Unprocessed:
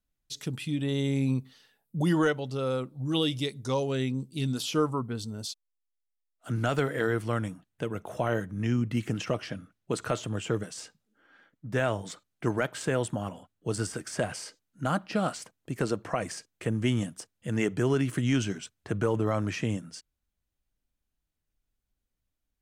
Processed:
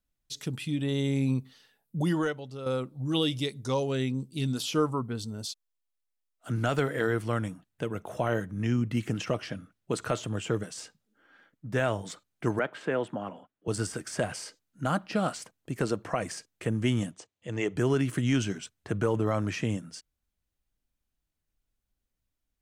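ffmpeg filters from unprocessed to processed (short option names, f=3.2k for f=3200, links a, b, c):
-filter_complex "[0:a]asettb=1/sr,asplit=3[a][b][c];[a]atrim=end=12.594[d];[b]atrim=start=12.59:end=13.68,asetpts=PTS-STARTPTS,afade=t=in:d=0.004:c=qsin,afade=t=out:st=1.086:d=0.004:c=qsin,acrossover=split=180 3300:gain=0.158 1 0.1[e][f][g];[e][f][g]amix=inputs=3:normalize=0[h];[c]atrim=start=13.676[i];[d][h]acrossfade=d=0.004:c1=hsin:c2=qsin[j];[j][i]acrossfade=d=0.004:c1=qsin:c2=hsin,asettb=1/sr,asplit=3[k][l][m];[k]atrim=end=17.114[n];[l]atrim=start=17.11:end=17.76,asetpts=PTS-STARTPTS,afade=t=in:d=0.004:c=qsin,afade=t=out:st=0.646:d=0.004:c=qsin,highpass=100,equalizer=f=150:t=q:w=4:g=-8,equalizer=f=230:t=q:w=4:g=-10,equalizer=f=1.5k:t=q:w=4:g=-8,equalizer=f=5.2k:t=q:w=4:g=-7,lowpass=f=7k:w=0.5412,lowpass=f=7k:w=1.3066[o];[m]atrim=start=17.756[p];[n][o]acrossfade=d=0.004:c1=hsin:c2=qsin[q];[q][p]acrossfade=d=0.004:c1=qsin:c2=hsin,asplit=2[r][s];[r]atrim=end=2.66,asetpts=PTS-STARTPTS,afade=t=out:st=1.96:d=0.7:c=qua:silence=0.398107[t];[s]atrim=start=2.66,asetpts=PTS-STARTPTS,afade=t=in:d=0.004:c=hsin:silence=0.398107[u];[t][u]concat=n=2:v=0:a=1"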